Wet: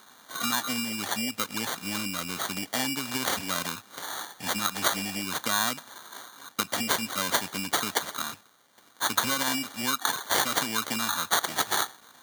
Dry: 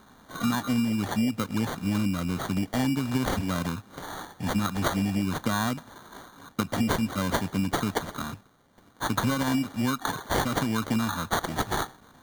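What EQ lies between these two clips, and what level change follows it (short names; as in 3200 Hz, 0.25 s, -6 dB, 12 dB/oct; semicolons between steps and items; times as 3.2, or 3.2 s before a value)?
HPF 630 Hz 6 dB/oct; high shelf 2000 Hz +9 dB; 0.0 dB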